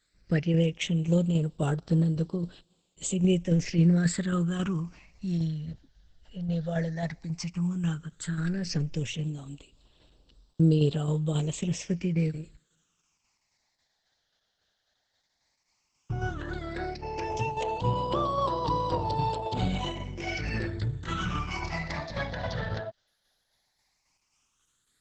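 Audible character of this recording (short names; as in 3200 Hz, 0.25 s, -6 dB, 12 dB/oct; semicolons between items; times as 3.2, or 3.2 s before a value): a quantiser's noise floor 12-bit, dither triangular; tremolo saw down 3.7 Hz, depth 45%; phasing stages 8, 0.12 Hz, lowest notch 320–2100 Hz; Opus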